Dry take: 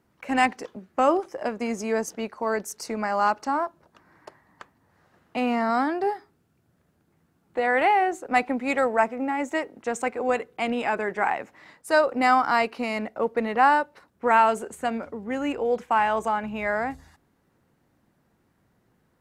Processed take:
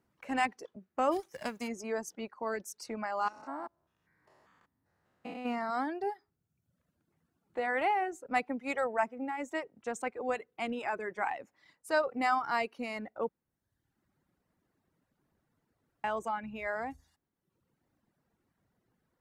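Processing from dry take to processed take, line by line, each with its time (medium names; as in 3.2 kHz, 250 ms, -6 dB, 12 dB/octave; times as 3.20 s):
1.11–1.67 s: formants flattened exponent 0.6
3.28–5.46 s: spectrogram pixelated in time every 200 ms
13.29–16.04 s: room tone
whole clip: reverb removal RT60 0.95 s; trim -8.5 dB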